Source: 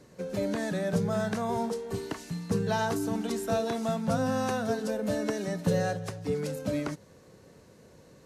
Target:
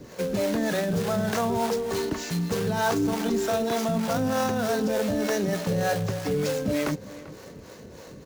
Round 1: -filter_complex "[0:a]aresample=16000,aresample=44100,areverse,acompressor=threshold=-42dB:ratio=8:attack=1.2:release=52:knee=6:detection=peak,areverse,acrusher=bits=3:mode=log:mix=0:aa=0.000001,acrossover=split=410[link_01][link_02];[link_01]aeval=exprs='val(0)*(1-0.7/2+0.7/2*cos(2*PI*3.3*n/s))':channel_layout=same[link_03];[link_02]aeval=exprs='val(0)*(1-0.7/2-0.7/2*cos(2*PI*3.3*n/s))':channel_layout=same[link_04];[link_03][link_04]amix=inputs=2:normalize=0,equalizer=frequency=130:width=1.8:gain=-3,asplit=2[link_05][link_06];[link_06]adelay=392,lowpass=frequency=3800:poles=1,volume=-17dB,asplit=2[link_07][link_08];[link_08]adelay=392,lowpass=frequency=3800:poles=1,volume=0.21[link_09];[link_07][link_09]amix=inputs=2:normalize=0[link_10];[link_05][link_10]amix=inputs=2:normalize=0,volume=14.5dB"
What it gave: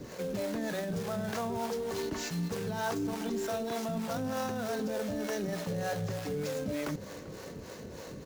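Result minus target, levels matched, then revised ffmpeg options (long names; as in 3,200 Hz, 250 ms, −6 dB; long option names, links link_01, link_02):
downward compressor: peak gain reduction +9 dB
-filter_complex "[0:a]aresample=16000,aresample=44100,areverse,acompressor=threshold=-32dB:ratio=8:attack=1.2:release=52:knee=6:detection=peak,areverse,acrusher=bits=3:mode=log:mix=0:aa=0.000001,acrossover=split=410[link_01][link_02];[link_01]aeval=exprs='val(0)*(1-0.7/2+0.7/2*cos(2*PI*3.3*n/s))':channel_layout=same[link_03];[link_02]aeval=exprs='val(0)*(1-0.7/2-0.7/2*cos(2*PI*3.3*n/s))':channel_layout=same[link_04];[link_03][link_04]amix=inputs=2:normalize=0,equalizer=frequency=130:width=1.8:gain=-3,asplit=2[link_05][link_06];[link_06]adelay=392,lowpass=frequency=3800:poles=1,volume=-17dB,asplit=2[link_07][link_08];[link_08]adelay=392,lowpass=frequency=3800:poles=1,volume=0.21[link_09];[link_07][link_09]amix=inputs=2:normalize=0[link_10];[link_05][link_10]amix=inputs=2:normalize=0,volume=14.5dB"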